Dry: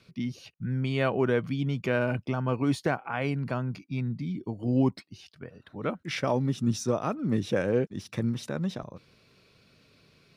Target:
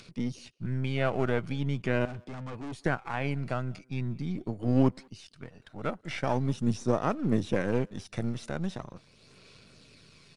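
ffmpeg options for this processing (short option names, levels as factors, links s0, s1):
-filter_complex "[0:a]aeval=exprs='if(lt(val(0),0),0.447*val(0),val(0))':c=same,acrossover=split=2700[s0][s1];[s1]acompressor=threshold=0.00316:ratio=4:attack=1:release=60[s2];[s0][s2]amix=inputs=2:normalize=0,aemphasis=mode=production:type=cd,acompressor=mode=upward:threshold=0.00355:ratio=2.5,aphaser=in_gain=1:out_gain=1:delay=1.5:decay=0.29:speed=0.42:type=sinusoidal,asettb=1/sr,asplit=3[s3][s4][s5];[s3]atrim=end=2.054[s6];[s4]atrim=start=2.05:end=2.84,asetpts=PTS-STARTPTS,afade=t=in:d=0.004:c=qsin,afade=t=out:st=0.786:d=0.004:c=qsin,aeval=exprs='(tanh(63.1*val(0)+0.45)-tanh(0.45))/63.1':c=same[s7];[s5]atrim=start=2.836[s8];[s6][s7]acrossfade=d=0.004:c1=hsin:c2=qsin[s9];[s9][s8]acrossfade=d=0.004:c1=qsin:c2=hsin,aresample=22050,aresample=44100,asplit=2[s10][s11];[s11]adelay=190,highpass=300,lowpass=3400,asoftclip=type=hard:threshold=0.0282,volume=0.0708[s12];[s10][s12]amix=inputs=2:normalize=0"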